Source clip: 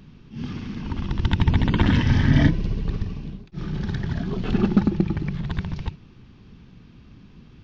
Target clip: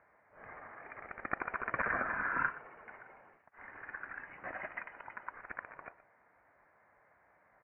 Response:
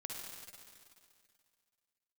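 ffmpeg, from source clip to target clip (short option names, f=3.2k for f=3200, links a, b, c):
-filter_complex "[0:a]highpass=f=1.5k:w=0.5412,highpass=f=1.5k:w=1.3066,asplit=2[a][b];[b]aecho=0:1:121:0.133[c];[a][c]amix=inputs=2:normalize=0,lowpass=f=2.8k:t=q:w=0.5098,lowpass=f=2.8k:t=q:w=0.6013,lowpass=f=2.8k:t=q:w=0.9,lowpass=f=2.8k:t=q:w=2.563,afreqshift=-3300" -ar 32000 -c:a libvorbis -b:a 64k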